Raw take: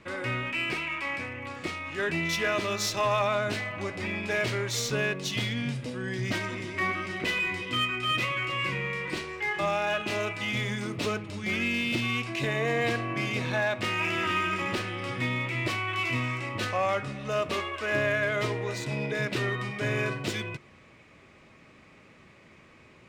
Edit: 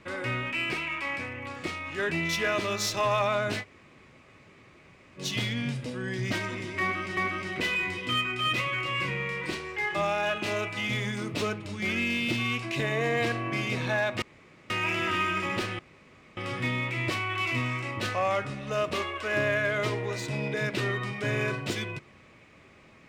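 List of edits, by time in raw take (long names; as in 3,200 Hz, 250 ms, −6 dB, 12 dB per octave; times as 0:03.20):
0:03.62–0:05.19: fill with room tone, crossfade 0.06 s
0:06.81–0:07.17: repeat, 2 plays
0:13.86: splice in room tone 0.48 s
0:14.95: splice in room tone 0.58 s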